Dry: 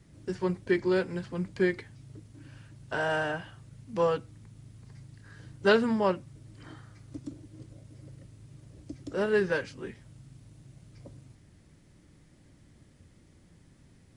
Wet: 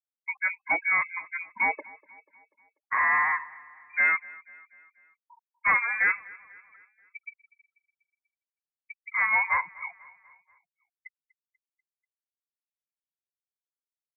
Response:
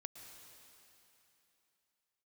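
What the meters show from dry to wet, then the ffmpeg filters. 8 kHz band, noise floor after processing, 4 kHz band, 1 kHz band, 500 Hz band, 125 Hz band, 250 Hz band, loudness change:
can't be measured, below −85 dBFS, below −40 dB, +6.5 dB, −19.0 dB, below −20 dB, below −20 dB, +4.0 dB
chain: -filter_complex "[0:a]highpass=610,aemphasis=mode=reproduction:type=75fm,afftfilt=real='re*gte(hypot(re,im),0.0126)':imag='im*gte(hypot(re,im),0.0126)':win_size=1024:overlap=0.75,asplit=2[link_01][link_02];[link_02]alimiter=limit=-22dB:level=0:latency=1:release=232,volume=-1dB[link_03];[link_01][link_03]amix=inputs=2:normalize=0,asoftclip=type=tanh:threshold=-21dB,asplit=2[link_04][link_05];[link_05]aecho=0:1:244|488|732|976:0.0794|0.0413|0.0215|0.0112[link_06];[link_04][link_06]amix=inputs=2:normalize=0,lowpass=frequency=2200:width_type=q:width=0.5098,lowpass=frequency=2200:width_type=q:width=0.6013,lowpass=frequency=2200:width_type=q:width=0.9,lowpass=frequency=2200:width_type=q:width=2.563,afreqshift=-2600,volume=4.5dB"

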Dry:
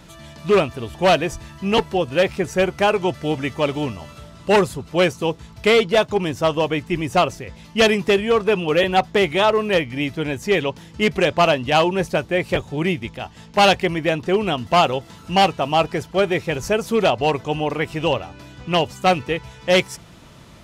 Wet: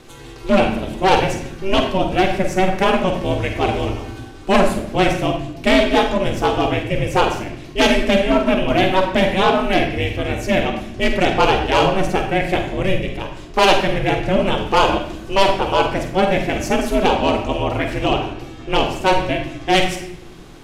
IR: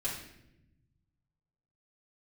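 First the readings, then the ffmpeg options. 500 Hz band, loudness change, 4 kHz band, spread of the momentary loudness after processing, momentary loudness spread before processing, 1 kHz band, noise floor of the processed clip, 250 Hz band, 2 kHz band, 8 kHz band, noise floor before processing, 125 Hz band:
+0.5 dB, +1.5 dB, +1.5 dB, 8 LU, 10 LU, +2.5 dB, −36 dBFS, +3.5 dB, +1.5 dB, +2.0 dB, −44 dBFS, +2.5 dB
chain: -filter_complex "[0:a]aeval=exprs='val(0)*sin(2*PI*190*n/s)':channel_layout=same,asoftclip=type=tanh:threshold=-8dB,asplit=2[link_01][link_02];[1:a]atrim=start_sample=2205,adelay=44[link_03];[link_02][link_03]afir=irnorm=-1:irlink=0,volume=-7.5dB[link_04];[link_01][link_04]amix=inputs=2:normalize=0,volume=4dB"

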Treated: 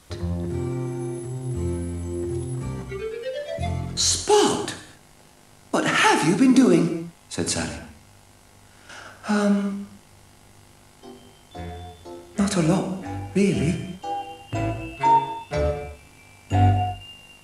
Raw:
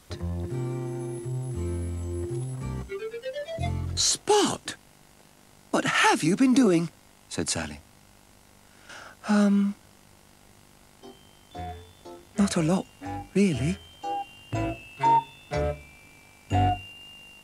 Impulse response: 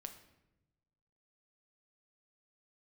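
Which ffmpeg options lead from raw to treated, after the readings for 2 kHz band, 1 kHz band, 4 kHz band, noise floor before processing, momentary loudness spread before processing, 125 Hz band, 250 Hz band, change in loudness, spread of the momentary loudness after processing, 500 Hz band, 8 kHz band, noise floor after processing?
+3.0 dB, +3.5 dB, +3.0 dB, −56 dBFS, 19 LU, +4.0 dB, +3.5 dB, +3.5 dB, 20 LU, +4.5 dB, +3.0 dB, −52 dBFS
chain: -filter_complex "[1:a]atrim=start_sample=2205,atrim=end_sample=6174,asetrate=23814,aresample=44100[link_01];[0:a][link_01]afir=irnorm=-1:irlink=0,volume=4.5dB"

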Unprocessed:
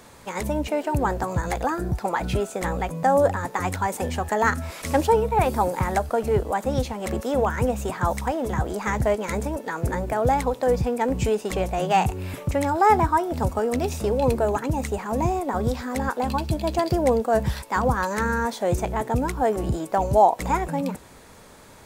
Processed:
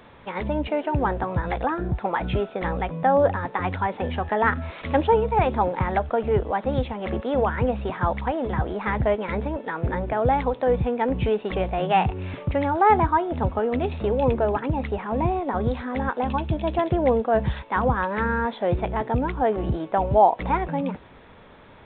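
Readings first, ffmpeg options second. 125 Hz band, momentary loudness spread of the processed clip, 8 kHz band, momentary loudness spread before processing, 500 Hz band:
0.0 dB, 8 LU, below −40 dB, 7 LU, 0.0 dB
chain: -af "aresample=8000,aresample=44100"

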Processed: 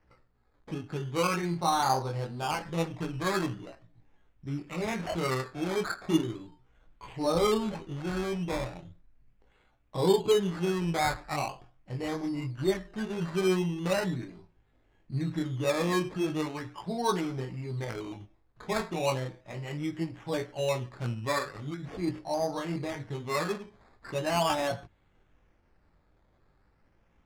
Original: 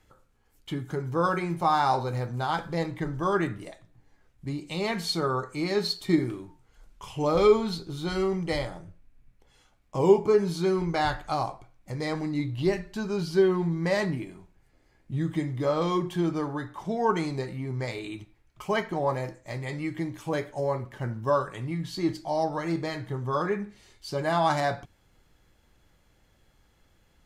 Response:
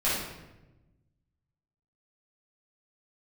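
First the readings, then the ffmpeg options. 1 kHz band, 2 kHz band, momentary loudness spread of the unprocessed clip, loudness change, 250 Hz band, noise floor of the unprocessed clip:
−3.5 dB, −2.0 dB, 13 LU, −3.5 dB, −3.0 dB, −65 dBFS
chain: -af "flanger=delay=16:depth=7.2:speed=0.29,acrusher=samples=12:mix=1:aa=0.000001:lfo=1:lforange=7.2:lforate=0.39,adynamicsmooth=sensitivity=6:basefreq=4500"

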